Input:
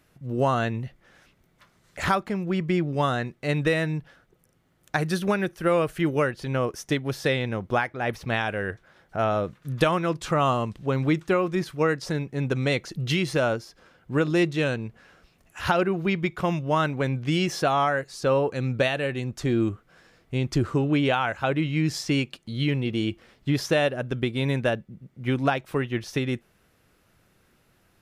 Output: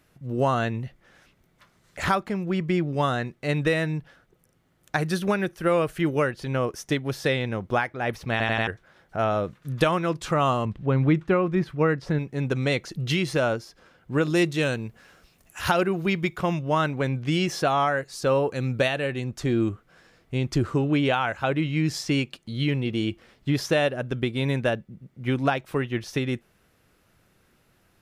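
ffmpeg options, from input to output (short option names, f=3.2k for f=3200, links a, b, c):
-filter_complex "[0:a]asettb=1/sr,asplit=3[a][b][c];[a]atrim=end=10.654[d];[b]atrim=start=10.65:end=12.19,asetpts=PTS-STARTPTS,afade=t=in:d=0.004:c=qsin,afade=t=out:st=1.536:d=0.004:c=qsin,bass=f=250:g=5,treble=f=4k:g=-14[e];[c]atrim=start=12.186[f];[d][e]acrossfade=d=0.004:c1=hsin:c2=qsin[g];[g][f]acrossfade=d=0.004:c1=qsin:c2=hsin,asettb=1/sr,asplit=3[h][i][j];[h]atrim=end=14.234[k];[i]atrim=start=14.23:end=16.38,asetpts=PTS-STARTPTS,afade=t=in:d=0.004:c=qsin,afade=t=out:st=2.146:d=0.004:c=qsin,highshelf=f=6.3k:g=10.5[l];[j]atrim=start=16.376[m];[k][l]acrossfade=d=0.004:c1=hsin:c2=qsin[n];[n][m]acrossfade=d=0.004:c1=qsin:c2=hsin,asettb=1/sr,asplit=3[o][p][q];[o]atrim=end=18.124[r];[p]atrim=start=18.12:end=18.88,asetpts=PTS-STARTPTS,afade=t=in:d=0.004:c=qsin,afade=t=out:st=0.756:d=0.004:c=qsin,highshelf=f=8.5k:g=7[s];[q]atrim=start=18.876[t];[r][s]acrossfade=d=0.004:c1=hsin:c2=qsin[u];[u][t]acrossfade=d=0.004:c1=qsin:c2=hsin,asplit=5[v][w][x][y][z];[v]atrim=end=8.402[aa];[w]atrim=start=8.308:end=8.402[ab];[x]atrim=start=8.308:end=8.402[ac];[y]atrim=start=8.308:end=8.402[ad];[z]atrim=start=8.668[ae];[aa][ab]acrossfade=d=0.004:c1=hsin:c2=hsin[af];[af][ac]acrossfade=d=0.004:c1=hsin:c2=hsin[ag];[ag][ad]acrossfade=d=0.004:c1=hsin:c2=hsin[ah];[ah][ae]acrossfade=d=0.004:c1=hsin:c2=hsin"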